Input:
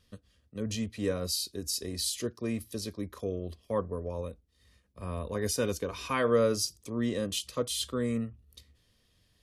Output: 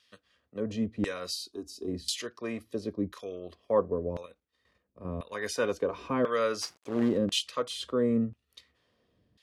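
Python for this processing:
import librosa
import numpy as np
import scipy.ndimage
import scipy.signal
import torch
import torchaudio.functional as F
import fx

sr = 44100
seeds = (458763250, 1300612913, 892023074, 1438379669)

y = fx.fixed_phaser(x, sr, hz=530.0, stages=6, at=(1.33, 1.87), fade=0.02)
y = fx.level_steps(y, sr, step_db=9, at=(4.23, 5.32))
y = fx.quant_companded(y, sr, bits=4, at=(6.61, 7.17), fade=0.02)
y = fx.filter_lfo_bandpass(y, sr, shape='saw_down', hz=0.96, low_hz=220.0, high_hz=3200.0, q=0.76)
y = y * librosa.db_to_amplitude(6.5)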